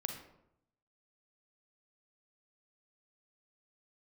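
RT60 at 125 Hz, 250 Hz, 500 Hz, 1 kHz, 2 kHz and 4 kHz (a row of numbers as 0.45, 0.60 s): 1.0, 0.90, 0.80, 0.75, 0.60, 0.45 s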